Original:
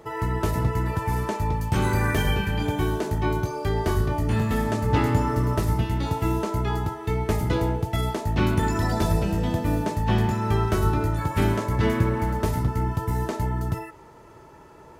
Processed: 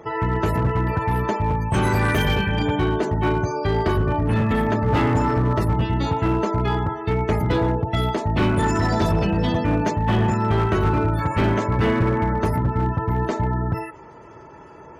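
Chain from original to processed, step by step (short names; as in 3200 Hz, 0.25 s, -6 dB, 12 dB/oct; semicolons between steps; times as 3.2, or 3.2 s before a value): HPF 77 Hz 6 dB/oct; spectral gate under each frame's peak -30 dB strong; 9.21–9.91 high shelf 3200 Hz +9.5 dB; overloaded stage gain 20 dB; gain +5.5 dB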